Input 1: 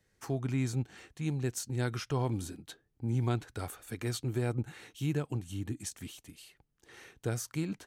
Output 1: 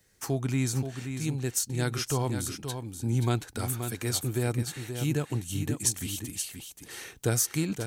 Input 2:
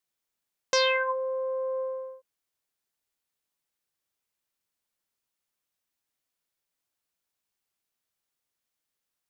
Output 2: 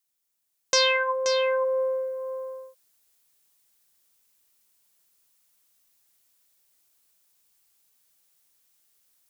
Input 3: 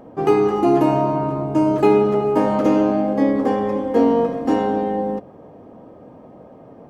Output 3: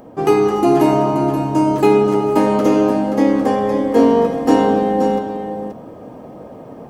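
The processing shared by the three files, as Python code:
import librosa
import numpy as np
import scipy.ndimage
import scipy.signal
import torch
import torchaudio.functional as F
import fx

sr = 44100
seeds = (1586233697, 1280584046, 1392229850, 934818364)

y = fx.high_shelf(x, sr, hz=4800.0, db=11.5)
y = fx.rider(y, sr, range_db=10, speed_s=2.0)
y = y + 10.0 ** (-8.0 / 20.0) * np.pad(y, (int(528 * sr / 1000.0), 0))[:len(y)]
y = y * librosa.db_to_amplitude(2.0)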